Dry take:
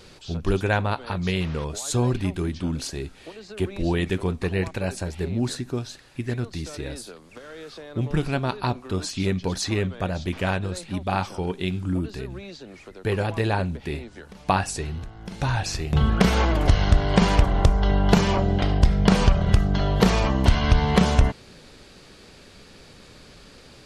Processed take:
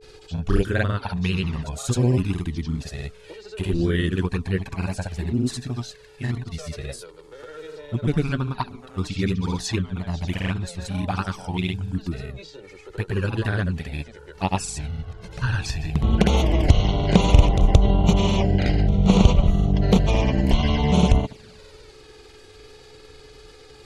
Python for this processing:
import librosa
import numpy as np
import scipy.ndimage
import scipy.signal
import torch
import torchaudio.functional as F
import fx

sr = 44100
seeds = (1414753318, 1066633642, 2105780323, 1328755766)

y = fx.env_flanger(x, sr, rest_ms=2.6, full_db=-15.5)
y = fx.granulator(y, sr, seeds[0], grain_ms=100.0, per_s=20.0, spray_ms=100.0, spread_st=0)
y = y + 10.0 ** (-53.0 / 20.0) * np.sin(2.0 * np.pi * 430.0 * np.arange(len(y)) / sr)
y = y * librosa.db_to_amplitude(4.0)